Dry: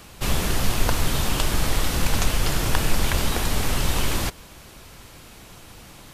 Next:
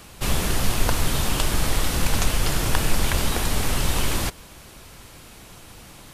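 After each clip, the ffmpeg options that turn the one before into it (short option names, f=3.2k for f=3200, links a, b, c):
-af "equalizer=f=9.6k:w=1.9:g=2.5"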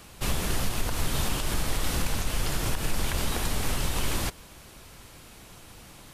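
-af "alimiter=limit=-12dB:level=0:latency=1:release=122,volume=-4dB"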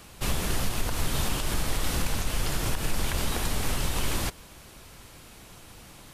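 -af anull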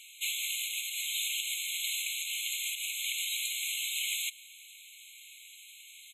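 -af "aresample=32000,aresample=44100,afftfilt=real='re*eq(mod(floor(b*sr/1024/2100),2),1)':imag='im*eq(mod(floor(b*sr/1024/2100),2),1)':win_size=1024:overlap=0.75,volume=3.5dB"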